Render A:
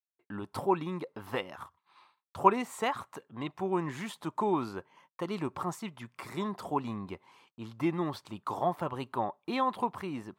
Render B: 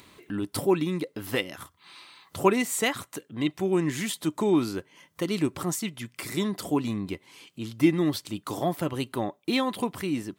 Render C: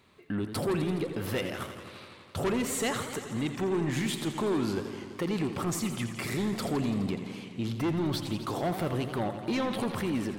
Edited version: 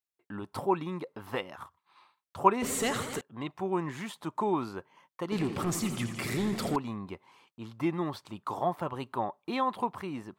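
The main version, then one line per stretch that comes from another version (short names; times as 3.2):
A
2.62–3.21 from C
5.32–6.76 from C
not used: B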